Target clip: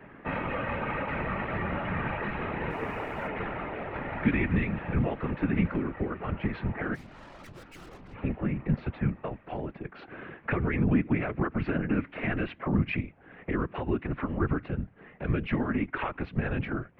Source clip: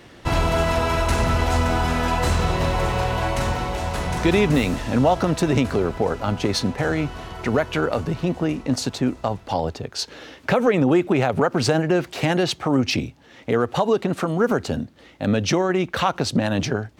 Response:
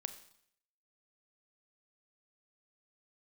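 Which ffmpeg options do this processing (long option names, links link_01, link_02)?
-filter_complex "[0:a]acrossover=split=320|1700|1800[link_01][link_02][link_03][link_04];[link_02]acompressor=threshold=-37dB:ratio=4[link_05];[link_01][link_05][link_03][link_04]amix=inputs=4:normalize=0,highpass=frequency=220:width_type=q:width=0.5412,highpass=frequency=220:width_type=q:width=1.307,lowpass=frequency=2400:width_type=q:width=0.5176,lowpass=frequency=2400:width_type=q:width=0.7071,lowpass=frequency=2400:width_type=q:width=1.932,afreqshift=-110,asplit=3[link_06][link_07][link_08];[link_06]afade=type=out:start_time=2.69:duration=0.02[link_09];[link_07]aeval=exprs='sgn(val(0))*max(abs(val(0))-0.00126,0)':channel_layout=same,afade=type=in:start_time=2.69:duration=0.02,afade=type=out:start_time=3.27:duration=0.02[link_10];[link_08]afade=type=in:start_time=3.27:duration=0.02[link_11];[link_09][link_10][link_11]amix=inputs=3:normalize=0,asplit=3[link_12][link_13][link_14];[link_12]afade=type=out:start_time=6.94:duration=0.02[link_15];[link_13]aeval=exprs='(tanh(178*val(0)+0.7)-tanh(0.7))/178':channel_layout=same,afade=type=in:start_time=6.94:duration=0.02,afade=type=out:start_time=8.13:duration=0.02[link_16];[link_14]afade=type=in:start_time=8.13:duration=0.02[link_17];[link_15][link_16][link_17]amix=inputs=3:normalize=0,afftfilt=real='hypot(re,im)*cos(2*PI*random(0))':imag='hypot(re,im)*sin(2*PI*random(1))':win_size=512:overlap=0.75,volume=4.5dB"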